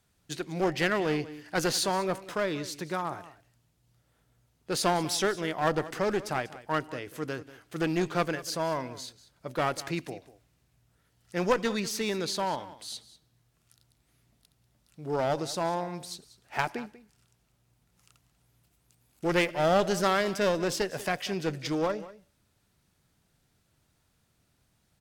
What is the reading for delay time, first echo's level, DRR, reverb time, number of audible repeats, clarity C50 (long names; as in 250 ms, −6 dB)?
191 ms, −17.0 dB, no reverb audible, no reverb audible, 1, no reverb audible